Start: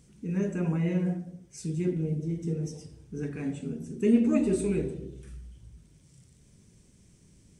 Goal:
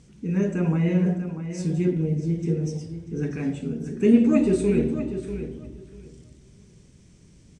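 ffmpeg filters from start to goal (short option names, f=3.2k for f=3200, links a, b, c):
-filter_complex "[0:a]lowpass=6.7k,asplit=2[a][b];[b]adelay=642,lowpass=f=4.8k:p=1,volume=-10dB,asplit=2[c][d];[d]adelay=642,lowpass=f=4.8k:p=1,volume=0.18,asplit=2[e][f];[f]adelay=642,lowpass=f=4.8k:p=1,volume=0.18[g];[a][c][e][g]amix=inputs=4:normalize=0,volume=5.5dB"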